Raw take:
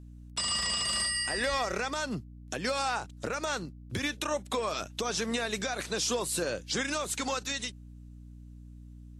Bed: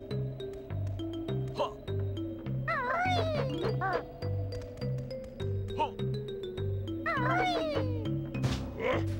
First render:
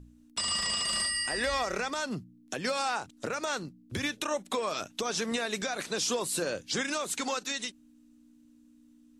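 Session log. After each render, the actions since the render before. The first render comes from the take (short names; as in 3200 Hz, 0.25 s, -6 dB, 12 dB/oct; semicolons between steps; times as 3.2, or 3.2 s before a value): de-hum 60 Hz, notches 3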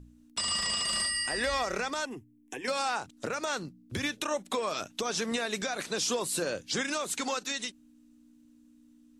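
2.05–2.68 fixed phaser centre 890 Hz, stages 8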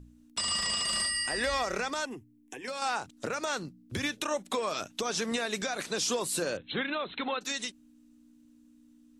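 2.16–2.82 compressor 1.5:1, threshold -44 dBFS; 6.57–7.41 brick-wall FIR low-pass 4200 Hz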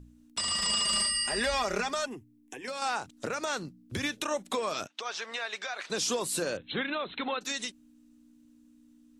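0.61–2.08 comb 4.9 ms; 4.87–5.9 BPF 780–4100 Hz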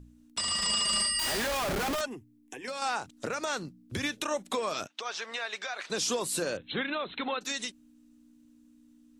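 1.19–2.01 Schmitt trigger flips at -38 dBFS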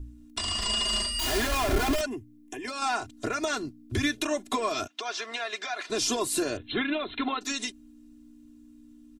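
low shelf 230 Hz +9.5 dB; comb 2.9 ms, depth 90%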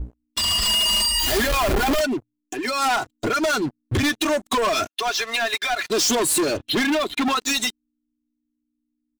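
per-bin expansion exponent 1.5; sample leveller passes 5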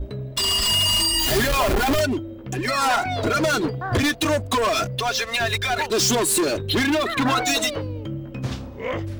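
add bed +3 dB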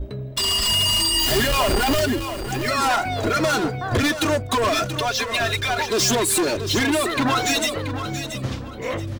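feedback echo 0.68 s, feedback 29%, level -10 dB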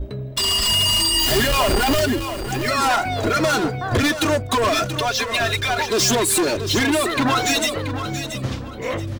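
gain +1.5 dB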